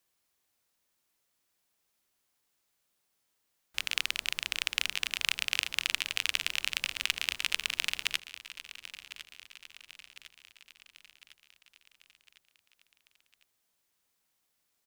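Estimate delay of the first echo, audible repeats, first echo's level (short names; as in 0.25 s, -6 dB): 1.054 s, 4, -15.0 dB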